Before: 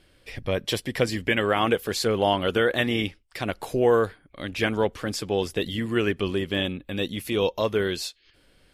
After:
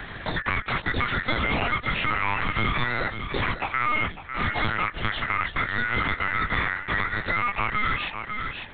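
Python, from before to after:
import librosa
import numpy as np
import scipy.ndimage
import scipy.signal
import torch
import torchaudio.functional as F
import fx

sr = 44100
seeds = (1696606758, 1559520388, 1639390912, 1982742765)

p1 = np.where(x < 0.0, 10.0 ** (-7.0 / 20.0) * x, x)
p2 = p1 * np.sin(2.0 * np.pi * 1700.0 * np.arange(len(p1)) / sr)
p3 = fx.doubler(p2, sr, ms=19.0, db=-6)
p4 = fx.over_compress(p3, sr, threshold_db=-32.0, ratio=-0.5)
p5 = p3 + (p4 * librosa.db_to_amplitude(0.0))
p6 = np.clip(10.0 ** (19.0 / 20.0) * p5, -1.0, 1.0) / 10.0 ** (19.0 / 20.0)
p7 = fx.low_shelf(p6, sr, hz=490.0, db=11.5)
p8 = fx.notch(p7, sr, hz=1600.0, q=5.6)
p9 = fx.lpc_vocoder(p8, sr, seeds[0], excitation='pitch_kept', order=10)
p10 = p9 + 10.0 ** (-13.0 / 20.0) * np.pad(p9, (int(549 * sr / 1000.0), 0))[:len(p9)]
y = fx.band_squash(p10, sr, depth_pct=70)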